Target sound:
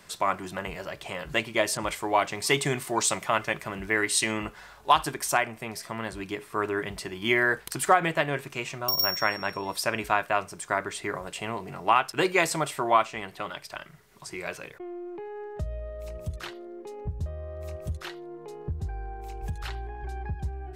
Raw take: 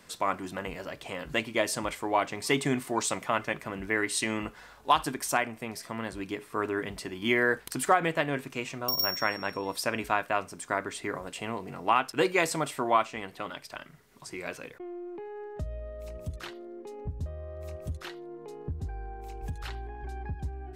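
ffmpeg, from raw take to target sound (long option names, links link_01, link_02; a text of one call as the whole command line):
ffmpeg -i in.wav -filter_complex "[0:a]equalizer=frequency=260:width_type=o:width=0.25:gain=-12.5,bandreject=frequency=490:width=12,asettb=1/sr,asplit=3[link_01][link_02][link_03];[link_01]atrim=end=1.774[link_04];[link_02]atrim=start=1.77:end=4.32,asetpts=PTS-STARTPTS,afade=type=in:duration=0.004:curve=qsin,afade=type=out:start_time=2.546:duration=0.004:curve=qsin,adynamicequalizer=threshold=0.0112:dfrequency=2800:dqfactor=0.7:tfrequency=2800:tqfactor=0.7:attack=5:release=100:ratio=0.375:range=1.5:mode=boostabove:tftype=highshelf[link_05];[link_03]atrim=start=4.316[link_06];[link_04][link_05]acrossfade=duration=0.004:curve1=hsin:curve2=qsin[link_07];[link_07][link_06]acrossfade=duration=0.004:curve1=qsin:curve2=hsin,volume=3dB" out.wav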